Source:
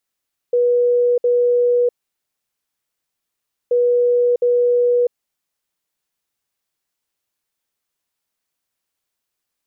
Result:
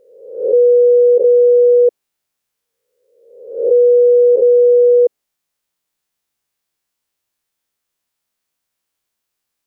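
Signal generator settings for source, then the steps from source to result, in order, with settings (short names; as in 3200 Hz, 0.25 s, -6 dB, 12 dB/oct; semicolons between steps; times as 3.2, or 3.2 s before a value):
beep pattern sine 486 Hz, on 0.65 s, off 0.06 s, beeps 2, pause 1.82 s, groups 2, -12 dBFS
spectral swells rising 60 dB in 0.88 s; dynamic EQ 390 Hz, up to +7 dB, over -29 dBFS, Q 0.85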